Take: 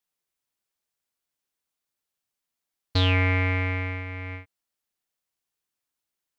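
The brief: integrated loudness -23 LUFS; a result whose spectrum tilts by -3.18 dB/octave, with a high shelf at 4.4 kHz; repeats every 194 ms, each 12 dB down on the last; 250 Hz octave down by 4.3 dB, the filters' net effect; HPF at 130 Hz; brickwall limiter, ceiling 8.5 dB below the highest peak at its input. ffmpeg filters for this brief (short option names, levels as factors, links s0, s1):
-af "highpass=130,equalizer=f=250:t=o:g=-4.5,highshelf=f=4400:g=4.5,alimiter=limit=0.141:level=0:latency=1,aecho=1:1:194|388|582:0.251|0.0628|0.0157,volume=2.51"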